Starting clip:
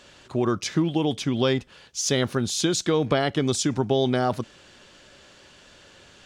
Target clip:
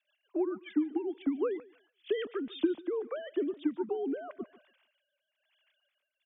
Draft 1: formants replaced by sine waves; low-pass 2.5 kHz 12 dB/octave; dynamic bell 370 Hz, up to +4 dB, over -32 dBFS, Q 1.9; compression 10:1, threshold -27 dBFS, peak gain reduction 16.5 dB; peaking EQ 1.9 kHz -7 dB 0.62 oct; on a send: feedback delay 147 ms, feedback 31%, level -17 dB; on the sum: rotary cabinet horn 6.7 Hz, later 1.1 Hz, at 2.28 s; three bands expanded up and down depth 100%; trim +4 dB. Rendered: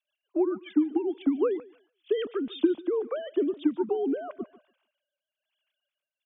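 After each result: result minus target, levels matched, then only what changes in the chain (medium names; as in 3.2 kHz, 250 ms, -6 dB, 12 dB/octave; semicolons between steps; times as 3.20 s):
compression: peak gain reduction -6 dB; 2 kHz band -5.0 dB
change: compression 10:1, threshold -33.5 dBFS, peak gain reduction 22 dB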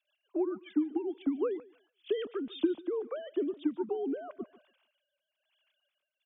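2 kHz band -4.5 dB
remove: peaking EQ 1.9 kHz -7 dB 0.62 oct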